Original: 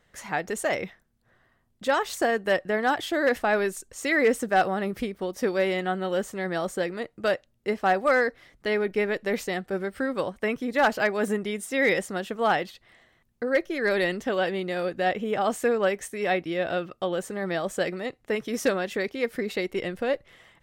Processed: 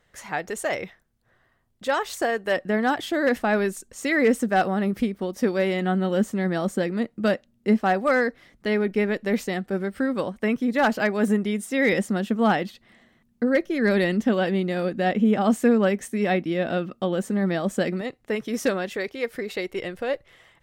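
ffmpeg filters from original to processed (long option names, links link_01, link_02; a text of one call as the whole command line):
ffmpeg -i in.wav -af "asetnsamples=nb_out_samples=441:pad=0,asendcmd='2.57 equalizer g 8.5;5.81 equalizer g 14.5;7.79 equalizer g 8.5;11.93 equalizer g 14.5;18.01 equalizer g 3.5;18.89 equalizer g -4',equalizer=frequency=220:width_type=o:width=0.77:gain=-2.5" out.wav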